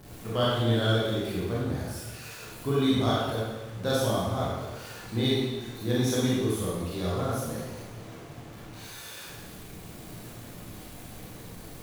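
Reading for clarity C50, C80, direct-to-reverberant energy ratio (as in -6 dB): -2.5 dB, 0.5 dB, -7.5 dB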